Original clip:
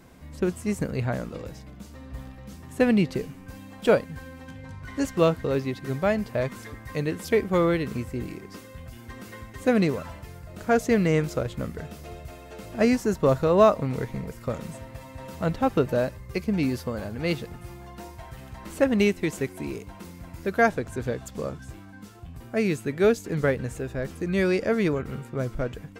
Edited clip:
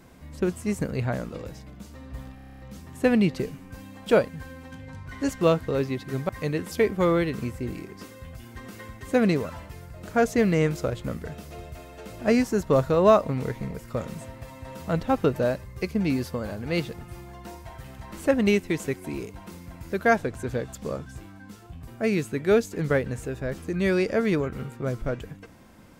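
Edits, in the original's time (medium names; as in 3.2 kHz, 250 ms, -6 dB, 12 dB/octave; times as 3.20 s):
2.35 s: stutter 0.03 s, 9 plays
6.05–6.82 s: delete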